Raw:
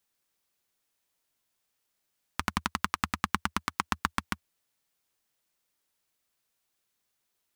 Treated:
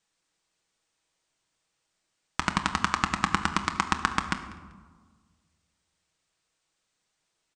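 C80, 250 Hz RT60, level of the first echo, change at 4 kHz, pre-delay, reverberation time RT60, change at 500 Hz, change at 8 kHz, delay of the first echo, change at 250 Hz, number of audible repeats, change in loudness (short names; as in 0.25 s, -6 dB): 11.5 dB, 1.8 s, -20.5 dB, +4.5 dB, 6 ms, 1.5 s, +5.0 dB, +3.5 dB, 0.194 s, +4.5 dB, 1, +4.5 dB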